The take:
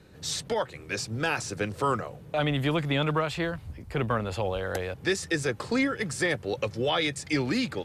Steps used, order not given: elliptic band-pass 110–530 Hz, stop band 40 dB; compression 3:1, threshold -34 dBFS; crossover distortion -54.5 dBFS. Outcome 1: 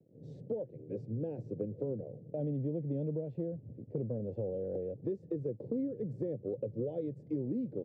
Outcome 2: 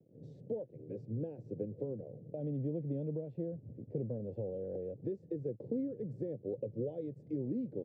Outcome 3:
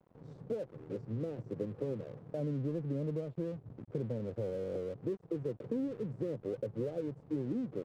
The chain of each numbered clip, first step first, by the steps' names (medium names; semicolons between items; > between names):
crossover distortion > elliptic band-pass > compression; compression > crossover distortion > elliptic band-pass; elliptic band-pass > compression > crossover distortion